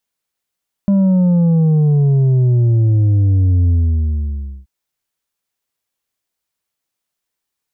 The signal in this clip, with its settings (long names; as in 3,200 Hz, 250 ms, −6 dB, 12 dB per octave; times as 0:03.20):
bass drop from 200 Hz, over 3.78 s, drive 5 dB, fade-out 0.97 s, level −10 dB